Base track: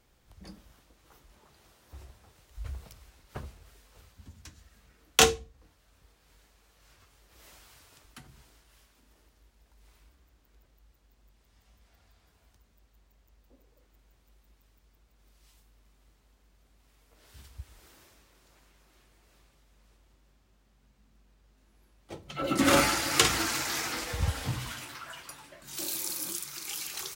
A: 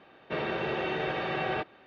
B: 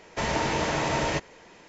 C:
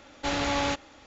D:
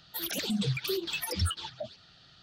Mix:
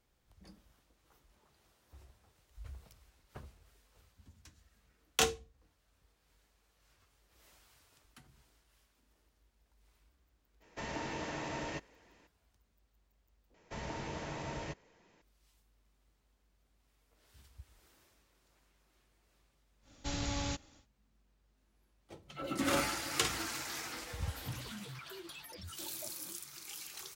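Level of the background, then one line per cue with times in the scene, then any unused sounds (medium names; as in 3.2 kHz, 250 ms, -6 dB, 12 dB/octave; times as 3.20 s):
base track -9.5 dB
10.60 s: add B -14.5 dB, fades 0.02 s + small resonant body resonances 280/1800/2700 Hz, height 6 dB
13.54 s: replace with B -17 dB + bass shelf 250 Hz +6.5 dB
19.81 s: add C -15 dB, fades 0.10 s + tone controls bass +14 dB, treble +13 dB
24.22 s: add D -10 dB + peak limiter -31.5 dBFS
not used: A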